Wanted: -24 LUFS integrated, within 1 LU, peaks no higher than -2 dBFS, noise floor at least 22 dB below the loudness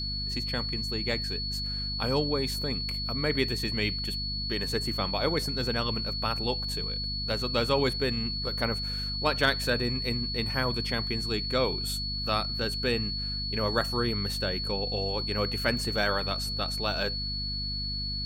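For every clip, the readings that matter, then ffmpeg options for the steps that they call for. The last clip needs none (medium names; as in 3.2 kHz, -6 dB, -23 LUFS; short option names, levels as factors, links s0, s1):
hum 50 Hz; highest harmonic 250 Hz; hum level -34 dBFS; steady tone 4.4 kHz; tone level -32 dBFS; loudness -28.5 LUFS; peak level -10.0 dBFS; loudness target -24.0 LUFS
-> -af "bandreject=f=50:t=h:w=6,bandreject=f=100:t=h:w=6,bandreject=f=150:t=h:w=6,bandreject=f=200:t=h:w=6,bandreject=f=250:t=h:w=6"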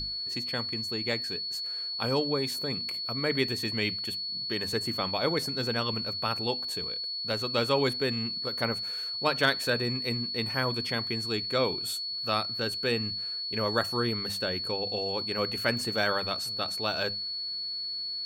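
hum not found; steady tone 4.4 kHz; tone level -32 dBFS
-> -af "bandreject=f=4400:w=30"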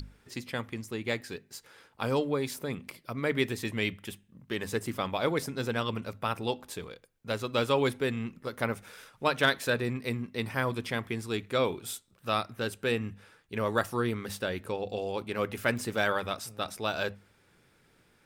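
steady tone not found; loudness -32.0 LUFS; peak level -10.5 dBFS; loudness target -24.0 LUFS
-> -af "volume=2.51"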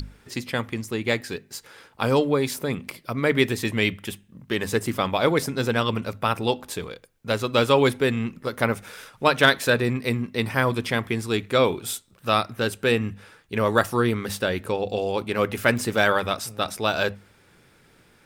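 loudness -24.0 LUFS; peak level -2.5 dBFS; noise floor -57 dBFS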